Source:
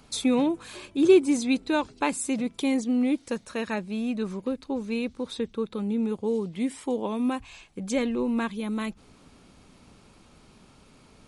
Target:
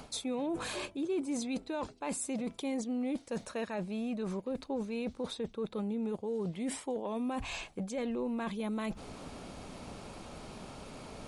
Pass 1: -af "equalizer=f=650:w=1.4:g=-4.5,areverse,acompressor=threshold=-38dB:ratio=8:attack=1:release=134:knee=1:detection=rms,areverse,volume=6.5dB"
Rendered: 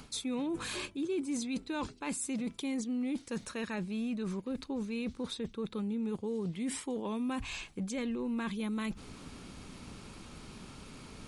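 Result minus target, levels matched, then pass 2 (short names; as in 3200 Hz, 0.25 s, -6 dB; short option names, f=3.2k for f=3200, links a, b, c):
500 Hz band -4.0 dB
-af "equalizer=f=650:w=1.4:g=7.5,areverse,acompressor=threshold=-38dB:ratio=8:attack=1:release=134:knee=1:detection=rms,areverse,volume=6.5dB"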